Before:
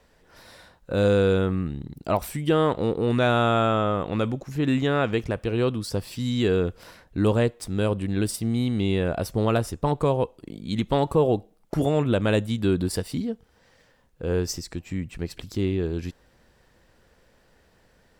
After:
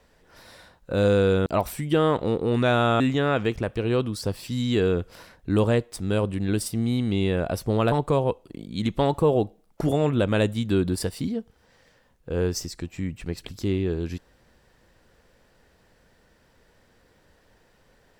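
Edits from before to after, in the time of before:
1.46–2.02 s: delete
3.56–4.68 s: delete
9.60–9.85 s: delete

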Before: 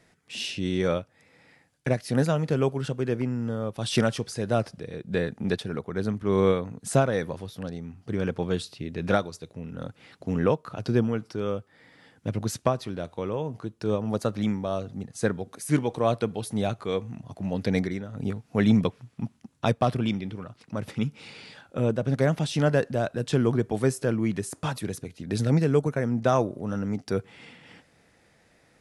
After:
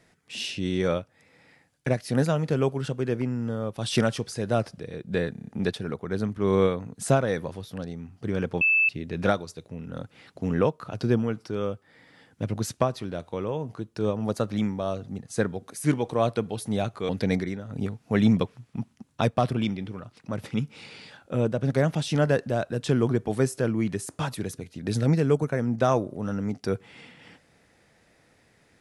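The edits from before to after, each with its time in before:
5.32 s: stutter 0.03 s, 6 plays
8.46–8.74 s: bleep 2.63 kHz -17.5 dBFS
16.94–17.53 s: delete

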